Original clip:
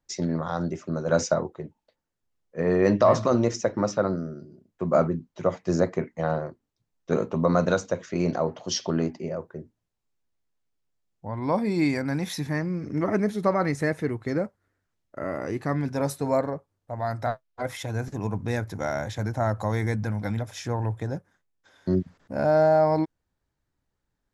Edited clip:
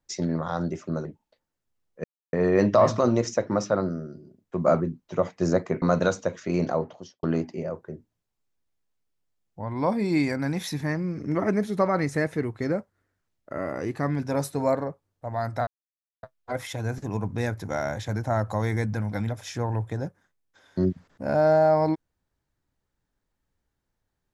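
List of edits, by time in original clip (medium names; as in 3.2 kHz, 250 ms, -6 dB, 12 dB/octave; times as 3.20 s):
1.05–1.61 s: delete
2.60 s: insert silence 0.29 s
6.09–7.48 s: delete
8.40–8.89 s: studio fade out
17.33 s: insert silence 0.56 s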